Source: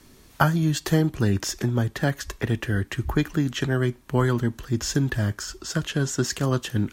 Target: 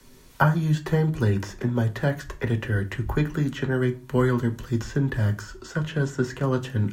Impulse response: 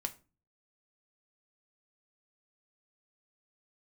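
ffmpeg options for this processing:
-filter_complex "[0:a]acrossover=split=110|440|2500[s0][s1][s2][s3];[s3]acompressor=threshold=0.00562:ratio=6[s4];[s0][s1][s2][s4]amix=inputs=4:normalize=0[s5];[1:a]atrim=start_sample=2205[s6];[s5][s6]afir=irnorm=-1:irlink=0"

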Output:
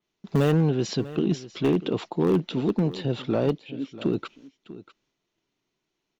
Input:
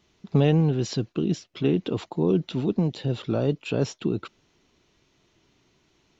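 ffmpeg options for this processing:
-filter_complex "[0:a]agate=range=0.141:threshold=0.001:ratio=16:detection=peak,equalizer=f=70:w=1:g=-12.5,asplit=2[s0][s1];[s1]aeval=exprs='(mod(5.01*val(0)+1,2)-1)/5.01':c=same,volume=0.335[s2];[s0][s2]amix=inputs=2:normalize=0,asettb=1/sr,asplit=3[s3][s4][s5];[s3]atrim=end=3.584[s6];[s4]atrim=start=3.58:end=3.98,asetpts=PTS-STARTPTS,afade=t=in:d=0.004:c=qsin,afade=t=out:st=0.396:d=0.004:c=qsin,asplit=3[s7][s8][s9];[s7]bandpass=f=270:t=q:w=8,volume=1[s10];[s8]bandpass=f=2290:t=q:w=8,volume=0.501[s11];[s9]bandpass=f=3010:t=q:w=8,volume=0.355[s12];[s10][s11][s12]amix=inputs=3:normalize=0[s13];[s5]atrim=start=3.976[s14];[s6][s13]acrossfade=d=0.004:c1=hsin:c2=qsin[s15];[s15][s14]acrossfade=d=0.004:c1=qsin:c2=hsin,volume=5.62,asoftclip=hard,volume=0.178,asplit=2[s16][s17];[s17]aecho=0:1:644:0.15[s18];[s16][s18]amix=inputs=2:normalize=0,adynamicequalizer=threshold=0.00316:dfrequency=5100:dqfactor=0.7:tfrequency=5100:tqfactor=0.7:attack=5:release=100:ratio=0.375:range=3:mode=cutabove:tftype=highshelf"

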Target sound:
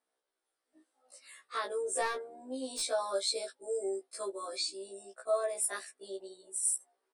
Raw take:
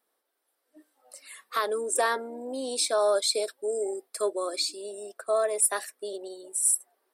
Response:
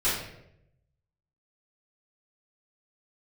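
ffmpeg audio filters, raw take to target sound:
-filter_complex "[0:a]aresample=22050,aresample=44100,asplit=3[s0][s1][s2];[s0]afade=t=out:st=2.01:d=0.02[s3];[s1]aeval=exprs='clip(val(0),-1,0.0631)':c=same,afade=t=in:st=2.01:d=0.02,afade=t=out:st=2.8:d=0.02[s4];[s2]afade=t=in:st=2.8:d=0.02[s5];[s3][s4][s5]amix=inputs=3:normalize=0,afftfilt=real='re*1.73*eq(mod(b,3),0)':imag='im*1.73*eq(mod(b,3),0)':win_size=2048:overlap=0.75,volume=0.596"

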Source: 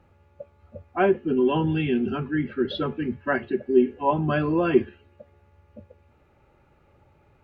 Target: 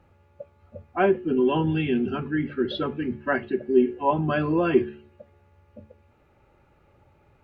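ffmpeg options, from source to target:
-af "bandreject=f=73.09:t=h:w=4,bandreject=f=146.18:t=h:w=4,bandreject=f=219.27:t=h:w=4,bandreject=f=292.36:t=h:w=4,bandreject=f=365.45:t=h:w=4,bandreject=f=438.54:t=h:w=4"

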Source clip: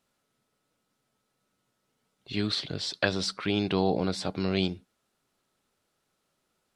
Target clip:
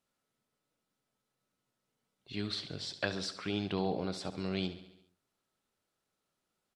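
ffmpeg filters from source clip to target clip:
-af "aecho=1:1:69|138|207|276|345|414:0.224|0.132|0.0779|0.046|0.0271|0.016,volume=0.398"

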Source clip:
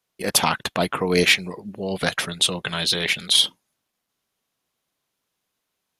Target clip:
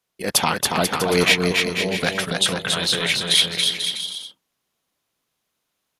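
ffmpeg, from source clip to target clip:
-af "aecho=1:1:280|490|647.5|765.6|854.2:0.631|0.398|0.251|0.158|0.1"

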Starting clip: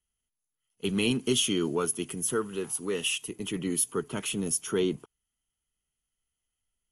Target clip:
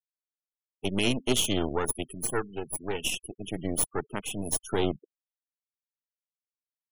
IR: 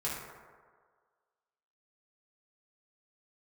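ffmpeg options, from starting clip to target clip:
-af "aeval=exprs='0.224*(cos(1*acos(clip(val(0)/0.224,-1,1)))-cos(1*PI/2))+0.0501*(cos(2*acos(clip(val(0)/0.224,-1,1)))-cos(2*PI/2))+0.00501*(cos(3*acos(clip(val(0)/0.224,-1,1)))-cos(3*PI/2))+0.0251*(cos(6*acos(clip(val(0)/0.224,-1,1)))-cos(6*PI/2))+0.0112*(cos(7*acos(clip(val(0)/0.224,-1,1)))-cos(7*PI/2))':c=same,afftfilt=real='re*gte(hypot(re,im),0.0141)':imag='im*gte(hypot(re,im),0.0141)':win_size=1024:overlap=0.75"

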